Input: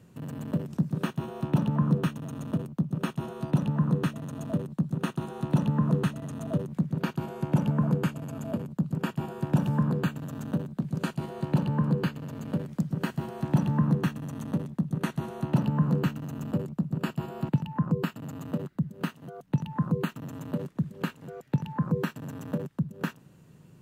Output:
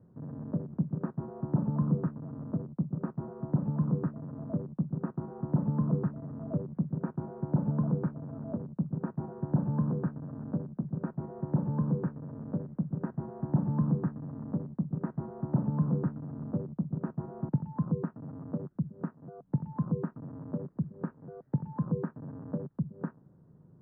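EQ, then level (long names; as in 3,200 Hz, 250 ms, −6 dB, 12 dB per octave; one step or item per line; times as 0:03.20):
Bessel low-pass filter 850 Hz, order 8
−3.5 dB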